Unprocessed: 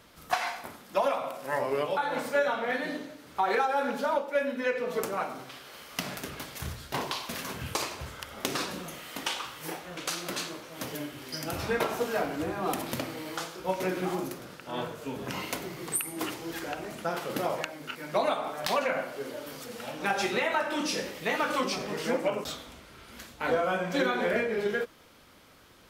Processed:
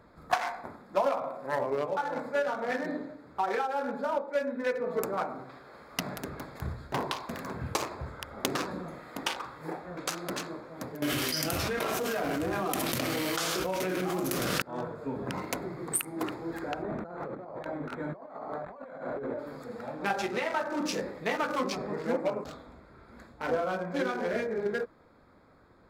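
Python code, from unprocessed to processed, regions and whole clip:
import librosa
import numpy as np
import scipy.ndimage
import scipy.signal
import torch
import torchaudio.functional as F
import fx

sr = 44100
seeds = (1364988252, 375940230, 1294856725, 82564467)

y = fx.chain(x, sr, fx.high_shelf(hz=2200.0, db=6.0),
    fx.notch(hz=880.0, q=8.8),
    fx.env_flatten(amount_pct=100), at=(11.02, 14.62))
y = fx.chain(y, sr, fx.high_shelf(hz=8200.0, db=-9.0),
    fx.over_compress(threshold_db=-40.0, ratio=-1.0),
    fx.resample_linear(factor=8), at=(16.82, 19.39))
y = fx.wiener(y, sr, points=15)
y = fx.rider(y, sr, range_db=4, speed_s=0.5)
y = y * librosa.db_to_amplitude(-2.0)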